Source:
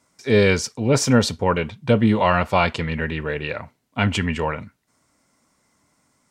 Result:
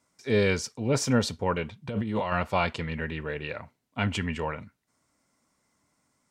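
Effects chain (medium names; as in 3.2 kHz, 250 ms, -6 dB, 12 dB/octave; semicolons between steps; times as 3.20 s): 1.89–2.32 s: compressor with a negative ratio -22 dBFS, ratio -1; trim -7.5 dB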